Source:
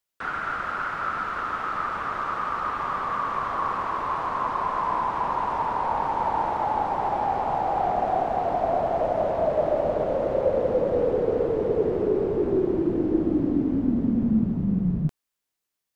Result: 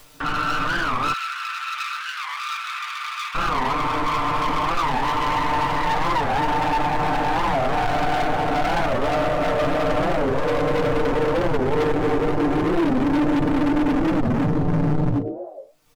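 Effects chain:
phase distortion by the signal itself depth 0.33 ms
ring modulation 27 Hz
spectral tilt −2 dB per octave
echo with shifted repeats 105 ms, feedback 53%, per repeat +100 Hz, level −13.5 dB
convolution reverb RT60 0.25 s, pre-delay 3 ms, DRR −6.5 dB
hard clipping −22 dBFS, distortion −4 dB
upward compression, threshold −27 dBFS
0:01.13–0:03.35: high-pass filter 1,500 Hz 24 dB per octave
comb filter 6.7 ms, depth 52%
wow of a warped record 45 rpm, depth 250 cents
level +1.5 dB

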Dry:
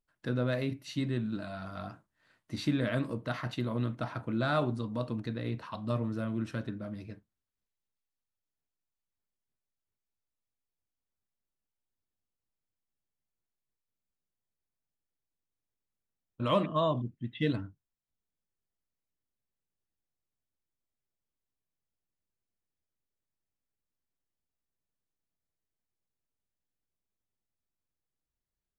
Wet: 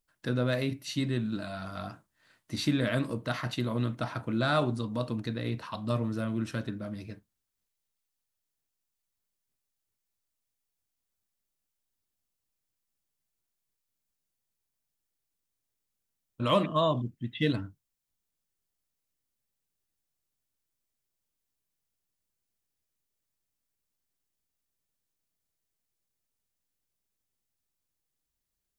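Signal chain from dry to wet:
high-shelf EQ 3,800 Hz +8 dB
level +2 dB

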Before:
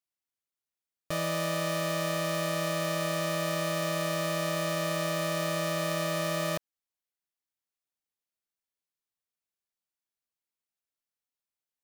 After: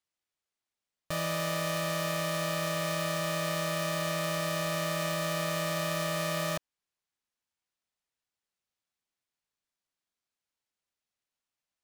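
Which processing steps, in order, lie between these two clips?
parametric band 380 Hz −7 dB 0.87 octaves
sample-rate reduction 16,000 Hz, jitter 0%

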